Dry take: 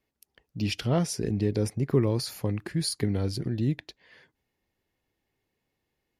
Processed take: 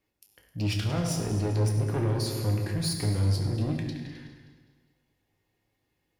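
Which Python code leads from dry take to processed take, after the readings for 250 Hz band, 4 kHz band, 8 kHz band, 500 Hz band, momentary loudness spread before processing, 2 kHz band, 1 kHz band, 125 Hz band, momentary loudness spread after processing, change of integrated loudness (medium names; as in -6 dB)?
-2.5 dB, -0.5 dB, 0.0 dB, -3.5 dB, 6 LU, +0.5 dB, +1.0 dB, +2.5 dB, 10 LU, 0.0 dB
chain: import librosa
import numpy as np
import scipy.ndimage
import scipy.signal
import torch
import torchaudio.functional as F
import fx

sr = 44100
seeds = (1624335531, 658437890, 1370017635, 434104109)

p1 = fx.reverse_delay_fb(x, sr, ms=102, feedback_pct=64, wet_db=-12.0)
p2 = p1 + fx.echo_single(p1, sr, ms=262, db=-16.0, dry=0)
p3 = 10.0 ** (-27.5 / 20.0) * np.tanh(p2 / 10.0 ** (-27.5 / 20.0))
y = fx.rev_fdn(p3, sr, rt60_s=1.2, lf_ratio=1.25, hf_ratio=0.85, size_ms=57.0, drr_db=1.5)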